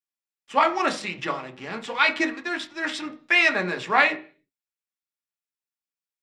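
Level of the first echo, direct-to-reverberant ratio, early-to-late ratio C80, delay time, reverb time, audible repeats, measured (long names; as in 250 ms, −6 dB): no echo audible, 5.0 dB, 21.0 dB, no echo audible, 0.40 s, no echo audible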